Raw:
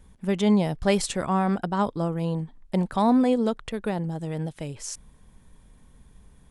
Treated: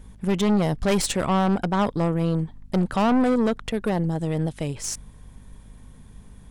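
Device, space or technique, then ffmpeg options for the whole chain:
valve amplifier with mains hum: -af "aeval=exprs='(tanh(15.8*val(0)+0.4)-tanh(0.4))/15.8':c=same,aeval=exprs='val(0)+0.002*(sin(2*PI*50*n/s)+sin(2*PI*2*50*n/s)/2+sin(2*PI*3*50*n/s)/3+sin(2*PI*4*50*n/s)/4+sin(2*PI*5*50*n/s)/5)':c=same,volume=2.24"

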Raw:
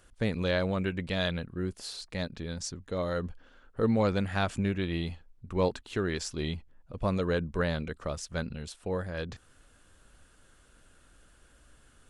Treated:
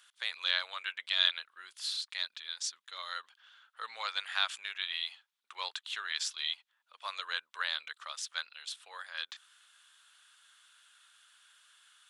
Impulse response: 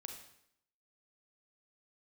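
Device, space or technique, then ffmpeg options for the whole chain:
headphones lying on a table: -filter_complex "[0:a]asplit=3[s0][s1][s2];[s0]afade=t=out:st=1.61:d=0.02[s3];[s1]asubboost=boost=5.5:cutoff=240,afade=t=in:st=1.61:d=0.02,afade=t=out:st=3.16:d=0.02[s4];[s2]afade=t=in:st=3.16:d=0.02[s5];[s3][s4][s5]amix=inputs=3:normalize=0,highpass=f=1100:w=0.5412,highpass=f=1100:w=1.3066,equalizer=f=3500:t=o:w=0.58:g=10"

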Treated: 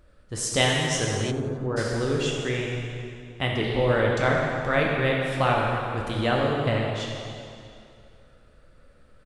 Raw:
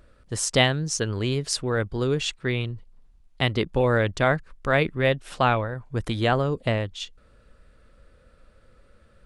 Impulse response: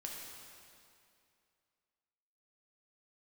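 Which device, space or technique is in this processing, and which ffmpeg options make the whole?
stairwell: -filter_complex "[1:a]atrim=start_sample=2205[s0];[0:a][s0]afir=irnorm=-1:irlink=0,asplit=3[s1][s2][s3];[s1]afade=t=out:st=1.3:d=0.02[s4];[s2]lowpass=f=1400:w=0.5412,lowpass=f=1400:w=1.3066,afade=t=in:st=1.3:d=0.02,afade=t=out:st=1.76:d=0.02[s5];[s3]afade=t=in:st=1.76:d=0.02[s6];[s4][s5][s6]amix=inputs=3:normalize=0,asettb=1/sr,asplit=3[s7][s8][s9];[s7]atrim=end=2.264[s10];[s8]atrim=start=2.26:end=3.64,asetpts=PTS-STARTPTS,afade=t=in:d=0.004:c=qsin,afade=t=out:st=1.376:d=0.004:c=qsin,equalizer=f=4300:w=5.3:g=-14[s11];[s9]atrim=start=3.636[s12];[s10][s11]acrossfade=d=0.004:c1=hsin:c2=qsin[s13];[s13][s12]acrossfade=d=0.004:c1=qsin:c2=hsin,asplit=6[s14][s15][s16][s17][s18][s19];[s15]adelay=89,afreqshift=120,volume=0.15[s20];[s16]adelay=178,afreqshift=240,volume=0.0776[s21];[s17]adelay=267,afreqshift=360,volume=0.0403[s22];[s18]adelay=356,afreqshift=480,volume=0.0211[s23];[s19]adelay=445,afreqshift=600,volume=0.011[s24];[s14][s20][s21][s22][s23][s24]amix=inputs=6:normalize=0,volume=1.19"

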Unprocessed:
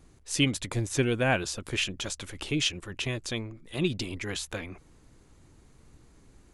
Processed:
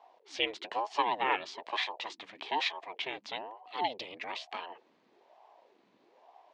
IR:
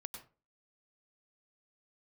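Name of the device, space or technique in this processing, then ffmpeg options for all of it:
voice changer toy: -af "aeval=exprs='val(0)*sin(2*PI*470*n/s+470*0.6/1.1*sin(2*PI*1.1*n/s))':c=same,highpass=510,equalizer=f=540:t=q:w=4:g=-4,equalizer=f=960:t=q:w=4:g=5,equalizer=f=1400:t=q:w=4:g=-6,lowpass=f=4200:w=0.5412,lowpass=f=4200:w=1.3066"

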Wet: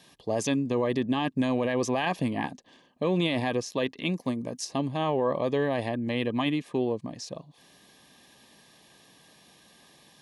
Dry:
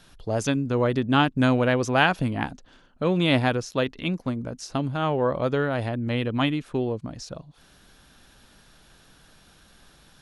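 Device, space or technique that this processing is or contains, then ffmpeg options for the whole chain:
PA system with an anti-feedback notch: -filter_complex "[0:a]asettb=1/sr,asplit=3[s0][s1][s2];[s0]atrim=end=4.084[s3];[s1]atrim=start=4.08:end=4.65,asetpts=PTS-STARTPTS,afade=t=in:d=0.004:c=qsin,afade=t=out:st=0.566:d=0.004:c=qsin,highshelf=f=6200:g=8.5[s4];[s2]atrim=start=4.646[s5];[s3][s4]acrossfade=d=0.004:c1=hsin:c2=qsin[s6];[s6][s5]acrossfade=d=0.004:c1=qsin:c2=hsin,highpass=170,asuperstop=centerf=1400:order=12:qfactor=4.1,alimiter=limit=0.15:level=0:latency=1:release=16"

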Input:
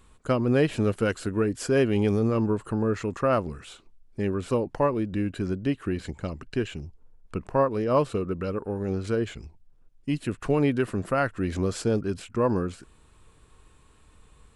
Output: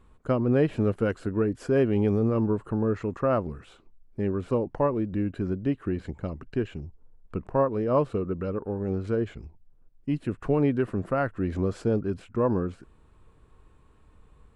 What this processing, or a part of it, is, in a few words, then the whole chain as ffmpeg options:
through cloth: -af "highshelf=f=2600:g=-16"

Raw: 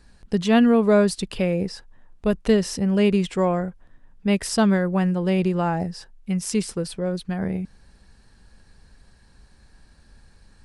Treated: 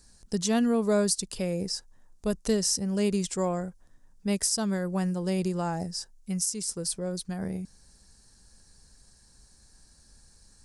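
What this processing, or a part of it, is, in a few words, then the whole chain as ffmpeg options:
over-bright horn tweeter: -af "highshelf=f=4200:t=q:w=1.5:g=13.5,alimiter=limit=0.398:level=0:latency=1:release=405,volume=0.447"

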